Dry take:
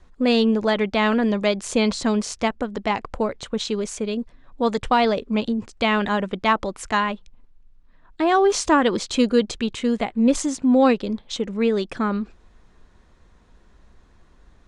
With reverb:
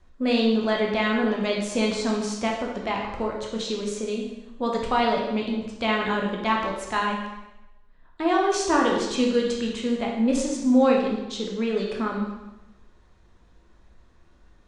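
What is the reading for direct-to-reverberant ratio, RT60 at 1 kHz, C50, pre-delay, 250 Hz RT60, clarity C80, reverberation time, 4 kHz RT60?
-1.5 dB, 1.0 s, 3.0 dB, 5 ms, 1.0 s, 5.5 dB, 0.95 s, 0.95 s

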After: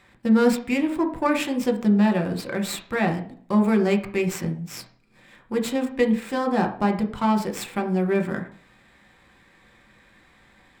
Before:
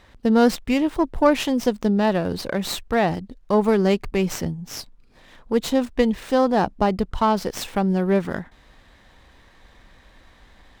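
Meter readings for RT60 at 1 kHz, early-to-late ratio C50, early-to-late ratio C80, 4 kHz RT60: 0.50 s, 11.5 dB, 16.0 dB, 0.45 s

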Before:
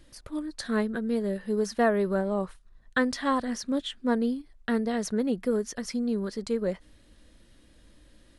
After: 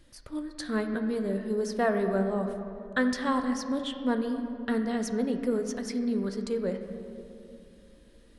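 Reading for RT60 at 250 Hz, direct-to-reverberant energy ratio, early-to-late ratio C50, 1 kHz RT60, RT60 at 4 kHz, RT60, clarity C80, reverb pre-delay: 3.3 s, 6.0 dB, 7.0 dB, 2.5 s, 1.4 s, 2.7 s, 8.0 dB, 10 ms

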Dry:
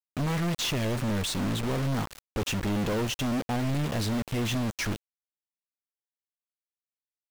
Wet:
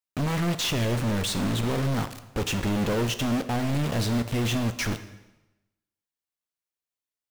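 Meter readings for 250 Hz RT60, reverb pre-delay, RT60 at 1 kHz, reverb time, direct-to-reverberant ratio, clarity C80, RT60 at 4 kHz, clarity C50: 1.0 s, 6 ms, 1.0 s, 1.0 s, 10.0 dB, 14.5 dB, 0.95 s, 12.5 dB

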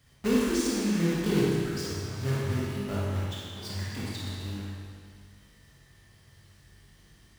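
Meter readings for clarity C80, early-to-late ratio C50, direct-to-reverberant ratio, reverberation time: -1.0 dB, -3.5 dB, -7.0 dB, 1.9 s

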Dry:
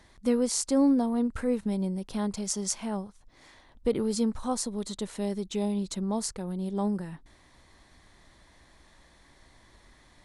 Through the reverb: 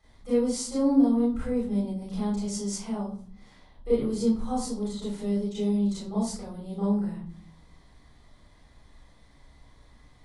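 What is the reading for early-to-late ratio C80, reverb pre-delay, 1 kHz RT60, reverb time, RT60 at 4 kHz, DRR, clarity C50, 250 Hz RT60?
7.5 dB, 29 ms, 0.40 s, 0.50 s, 0.35 s, -9.5 dB, 2.0 dB, 0.90 s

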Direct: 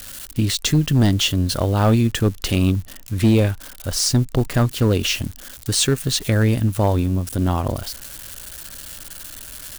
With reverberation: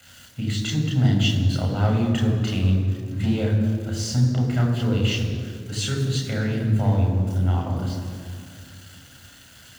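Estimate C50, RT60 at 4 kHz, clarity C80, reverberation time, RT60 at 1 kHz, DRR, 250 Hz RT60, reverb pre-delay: 4.0 dB, 1.4 s, 5.5 dB, 2.1 s, 2.0 s, -0.5 dB, 2.9 s, 3 ms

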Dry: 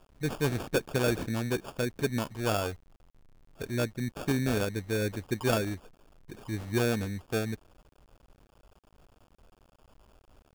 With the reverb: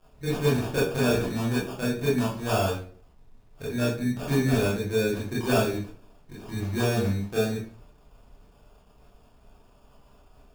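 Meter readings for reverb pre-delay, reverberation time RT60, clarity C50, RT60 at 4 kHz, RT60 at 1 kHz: 20 ms, 0.45 s, 2.5 dB, 0.35 s, 0.40 s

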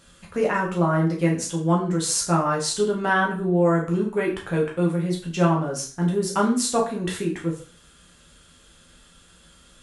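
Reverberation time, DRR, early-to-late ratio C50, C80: 0.40 s, -2.5 dB, 8.5 dB, 12.0 dB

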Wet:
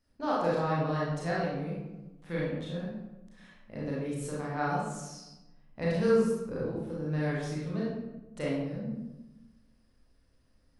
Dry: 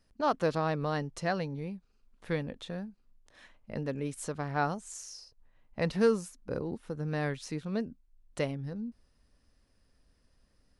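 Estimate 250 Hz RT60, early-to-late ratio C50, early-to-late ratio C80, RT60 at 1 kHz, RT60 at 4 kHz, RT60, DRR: 1.4 s, -1.0 dB, 2.5 dB, 1.0 s, 0.60 s, 1.1 s, -7.0 dB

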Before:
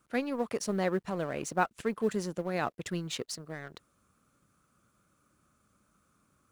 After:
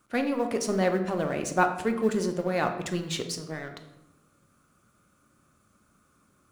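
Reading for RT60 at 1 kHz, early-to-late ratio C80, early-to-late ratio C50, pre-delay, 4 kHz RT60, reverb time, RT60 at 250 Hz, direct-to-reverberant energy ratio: 0.85 s, 11.5 dB, 8.5 dB, 3 ms, 0.60 s, 0.95 s, 1.3 s, 5.0 dB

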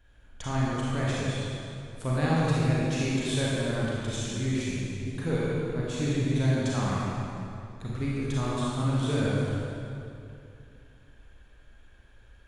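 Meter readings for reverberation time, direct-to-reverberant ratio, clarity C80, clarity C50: 2.6 s, -7.0 dB, -2.5 dB, -4.5 dB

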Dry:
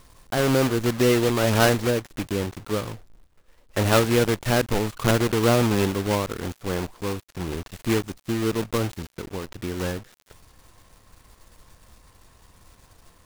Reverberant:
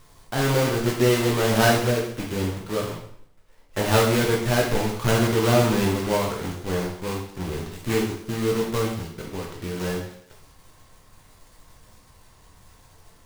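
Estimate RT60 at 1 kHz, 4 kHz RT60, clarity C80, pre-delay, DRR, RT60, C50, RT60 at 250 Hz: 0.65 s, 0.60 s, 8.0 dB, 5 ms, -2.0 dB, 0.65 s, 4.5 dB, 0.65 s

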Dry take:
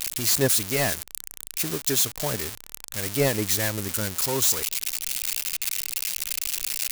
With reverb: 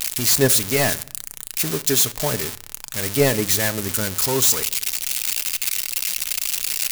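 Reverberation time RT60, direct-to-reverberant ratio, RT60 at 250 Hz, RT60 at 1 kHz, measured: 0.60 s, 12.0 dB, 1.0 s, 0.60 s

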